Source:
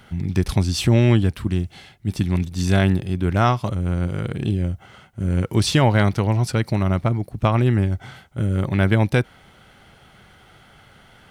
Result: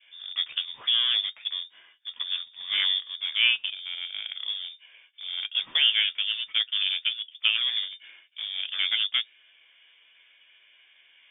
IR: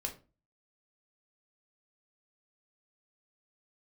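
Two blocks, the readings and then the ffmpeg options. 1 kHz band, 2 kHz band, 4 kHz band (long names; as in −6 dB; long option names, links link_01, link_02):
−22.0 dB, −1.0 dB, +10.5 dB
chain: -filter_complex "[0:a]acrossover=split=260 2000:gain=0.0794 1 0.0631[link_01][link_02][link_03];[link_01][link_02][link_03]amix=inputs=3:normalize=0,flanger=delay=9.1:depth=3.6:regen=44:speed=0.76:shape=sinusoidal,asplit=2[link_04][link_05];[link_05]aeval=exprs='val(0)*gte(abs(val(0)),0.0266)':channel_layout=same,volume=-6.5dB[link_06];[link_04][link_06]amix=inputs=2:normalize=0,lowpass=frequency=3100:width_type=q:width=0.5098,lowpass=frequency=3100:width_type=q:width=0.6013,lowpass=frequency=3100:width_type=q:width=0.9,lowpass=frequency=3100:width_type=q:width=2.563,afreqshift=-3700,adynamicequalizer=threshold=0.00631:dfrequency=930:dqfactor=0.86:tfrequency=930:tqfactor=0.86:attack=5:release=100:ratio=0.375:range=2.5:mode=cutabove:tftype=bell"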